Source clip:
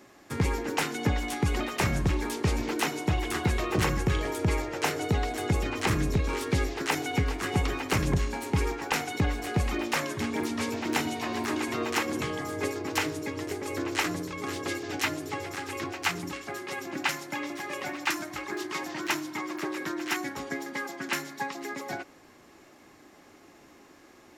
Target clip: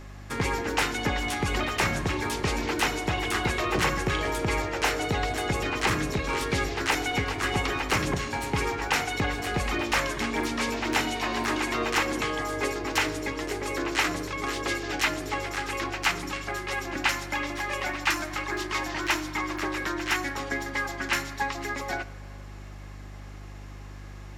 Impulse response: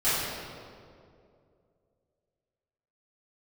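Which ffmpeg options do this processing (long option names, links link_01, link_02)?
-filter_complex "[0:a]asplit=2[link_01][link_02];[link_02]highpass=frequency=720:poles=1,volume=11dB,asoftclip=type=tanh:threshold=-13.5dB[link_03];[link_01][link_03]amix=inputs=2:normalize=0,lowpass=frequency=5500:poles=1,volume=-6dB,aeval=exprs='val(0)+0.00708*(sin(2*PI*50*n/s)+sin(2*PI*2*50*n/s)/2+sin(2*PI*3*50*n/s)/3+sin(2*PI*4*50*n/s)/4+sin(2*PI*5*50*n/s)/5)':channel_layout=same,asplit=2[link_04][link_05];[1:a]atrim=start_sample=2205,lowshelf=frequency=170:gain=11.5[link_06];[link_05][link_06]afir=irnorm=-1:irlink=0,volume=-30dB[link_07];[link_04][link_07]amix=inputs=2:normalize=0"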